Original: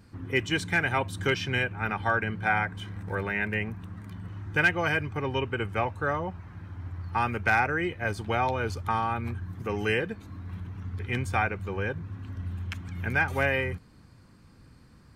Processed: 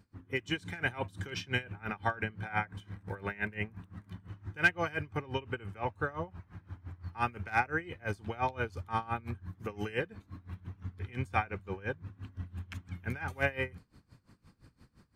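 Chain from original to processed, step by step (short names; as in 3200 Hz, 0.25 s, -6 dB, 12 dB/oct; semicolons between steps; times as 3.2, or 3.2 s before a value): AGC gain up to 5 dB; dB-linear tremolo 5.8 Hz, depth 21 dB; gain -6.5 dB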